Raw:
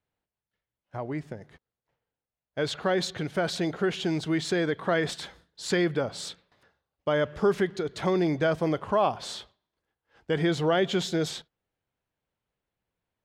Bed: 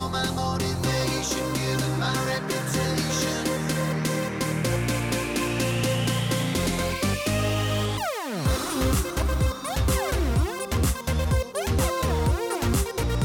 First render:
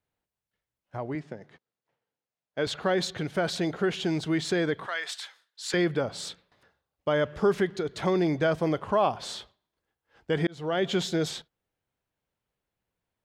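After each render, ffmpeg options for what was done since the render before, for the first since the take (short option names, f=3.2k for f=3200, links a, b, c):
-filter_complex "[0:a]asettb=1/sr,asplit=3[a][b][c];[a]atrim=end=1.154[d];[b]atrim=start=1.15:end=2.67,asetpts=PTS-STARTPTS,afade=t=in:d=0.004:c=qsin,afade=t=out:st=1.516:d=0.004:c=qsin,highpass=150,lowpass=6.5k[e];[c]atrim=start=2.666[f];[d][e]acrossfade=d=0.004:c1=hsin:c2=qsin[g];[g][f]acrossfade=d=0.004:c1=qsin:c2=hsin,asettb=1/sr,asplit=3[h][i][j];[h]atrim=end=4.864[k];[i]atrim=start=4.86:end=5.74,asetpts=PTS-STARTPTS,afade=t=in:d=0.004:c=qsin,afade=t=out:st=0.876:d=0.004:c=qsin,highpass=1.3k[l];[j]atrim=start=5.736[m];[k][l]acrossfade=d=0.004:c1=hsin:c2=qsin[n];[n][m]acrossfade=d=0.004:c1=qsin:c2=hsin,asplit=2[o][p];[o]atrim=end=10.47,asetpts=PTS-STARTPTS,afade=t=out:st=10.466:d=0.004:c=hsin[q];[p]atrim=start=10.47,asetpts=PTS-STARTPTS,afade=t=in:d=0.43[r];[q][r]concat=n=2:v=0:a=1"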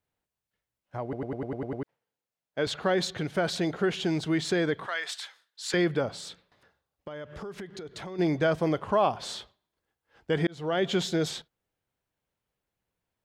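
-filter_complex "[0:a]asplit=3[a][b][c];[a]afade=t=out:st=6.11:d=0.02[d];[b]acompressor=threshold=-37dB:ratio=6:attack=3.2:release=140:knee=1:detection=peak,afade=t=in:st=6.11:d=0.02,afade=t=out:st=8.18:d=0.02[e];[c]afade=t=in:st=8.18:d=0.02[f];[d][e][f]amix=inputs=3:normalize=0,asplit=9[g][h][i][j][k][l][m][n][o];[g]atrim=end=1.132[p];[h]atrim=start=1.028:end=1.132[q];[i]atrim=start=1.028:end=1.132[r];[j]atrim=start=1.028:end=1.132[s];[k]atrim=start=1.028:end=1.132[t];[l]atrim=start=1.028:end=1.132[u];[m]atrim=start=1.028:end=1.132[v];[n]atrim=start=1.028:end=1.132[w];[o]atrim=start=1.828[x];[p][q]acrossfade=d=0.004:c1=hsin:c2=hsin[y];[y][r]acrossfade=d=0.004:c1=hsin:c2=hsin[z];[z][s]acrossfade=d=0.004:c1=hsin:c2=hsin[aa];[aa][t]acrossfade=d=0.004:c1=hsin:c2=hsin[ab];[ab][u]acrossfade=d=0.004:c1=hsin:c2=hsin[ac];[ac][v]acrossfade=d=0.004:c1=hsin:c2=hsin[ad];[ad][w]acrossfade=d=0.004:c1=hsin:c2=hsin[ae];[ae][x]acrossfade=d=0.004:c1=hsin:c2=hsin"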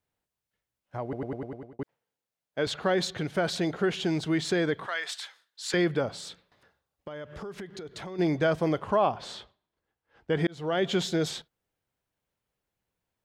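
-filter_complex "[0:a]asettb=1/sr,asplit=3[a][b][c];[a]atrim=end=8.964[d];[b]atrim=start=8.96:end=10.39,asetpts=PTS-STARTPTS,afade=t=in:d=0.004:c=qsin,afade=t=out:st=1.426:d=0.004:c=qsin,highshelf=f=5.2k:g=-10.5[e];[c]atrim=start=10.386[f];[d][e]acrossfade=d=0.004:c1=hsin:c2=qsin[g];[g][f]acrossfade=d=0.004:c1=qsin:c2=hsin,asplit=2[h][i];[h]atrim=end=1.79,asetpts=PTS-STARTPTS,afade=t=out:st=1.3:d=0.49[j];[i]atrim=start=1.79,asetpts=PTS-STARTPTS,afade=t=in:d=0.004:c=hsin[k];[j][k]concat=n=2:v=0:a=1"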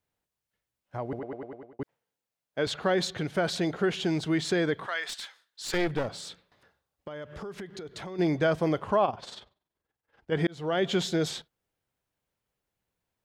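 -filter_complex "[0:a]asettb=1/sr,asplit=3[a][b][c];[a]atrim=end=1.194[d];[b]atrim=start=1.19:end=1.8,asetpts=PTS-STARTPTS,afade=t=in:d=0.004:c=qsin,afade=t=out:st=0.606:d=0.004:c=qsin,bass=f=250:g=-12,treble=f=4k:g=-11[e];[c]atrim=start=1.796[f];[d][e]acrossfade=d=0.004:c1=hsin:c2=qsin[g];[g][f]acrossfade=d=0.004:c1=qsin:c2=hsin,asettb=1/sr,asplit=3[h][i][j];[h]atrim=end=5.064[k];[i]atrim=start=5.06:end=7.36,asetpts=PTS-STARTPTS,afade=t=in:d=0.004:c=qsin,afade=t=out:st=2.296:d=0.004:c=qsin,aeval=exprs='clip(val(0),-1,0.02)':c=same[l];[j]atrim=start=7.356[m];[k][l]acrossfade=d=0.004:c1=hsin:c2=qsin[n];[n][m]acrossfade=d=0.004:c1=qsin:c2=hsin,asplit=3[o][p][q];[o]afade=t=out:st=9.04:d=0.02[r];[p]tremolo=f=21:d=0.667,afade=t=in:st=9.04:d=0.02,afade=t=out:st=10.31:d=0.02[s];[q]afade=t=in:st=10.31:d=0.02[t];[r][s][t]amix=inputs=3:normalize=0"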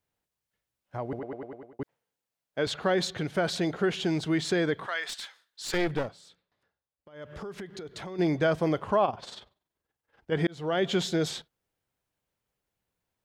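-filter_complex "[0:a]asplit=3[a][b][c];[a]atrim=end=6.14,asetpts=PTS-STARTPTS,afade=t=out:st=6.01:d=0.13:silence=0.211349[d];[b]atrim=start=6.14:end=7.12,asetpts=PTS-STARTPTS,volume=-13.5dB[e];[c]atrim=start=7.12,asetpts=PTS-STARTPTS,afade=t=in:d=0.13:silence=0.211349[f];[d][e][f]concat=n=3:v=0:a=1"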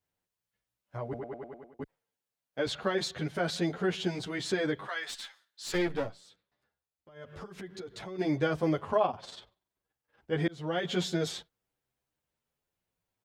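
-filter_complex "[0:a]asplit=2[a][b];[b]adelay=9.1,afreqshift=0.55[c];[a][c]amix=inputs=2:normalize=1"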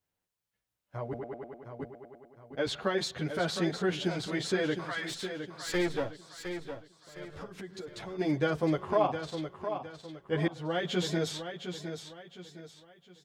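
-af "aecho=1:1:711|1422|2133|2844:0.376|0.135|0.0487|0.0175"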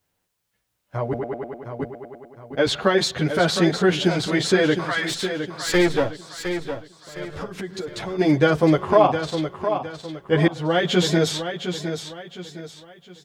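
-af "volume=11.5dB,alimiter=limit=-3dB:level=0:latency=1"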